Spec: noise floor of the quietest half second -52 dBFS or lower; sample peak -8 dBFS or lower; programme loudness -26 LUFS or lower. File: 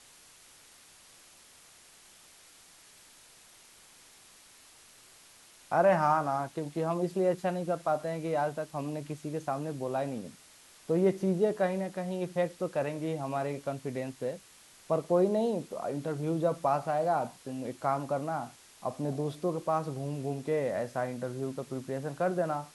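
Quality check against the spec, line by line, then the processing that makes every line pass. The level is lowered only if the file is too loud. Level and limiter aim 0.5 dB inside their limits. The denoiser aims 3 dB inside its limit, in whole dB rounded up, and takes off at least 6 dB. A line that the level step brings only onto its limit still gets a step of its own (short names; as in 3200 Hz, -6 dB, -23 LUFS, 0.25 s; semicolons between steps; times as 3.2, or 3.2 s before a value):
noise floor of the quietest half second -57 dBFS: OK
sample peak -13.0 dBFS: OK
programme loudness -32.0 LUFS: OK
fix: none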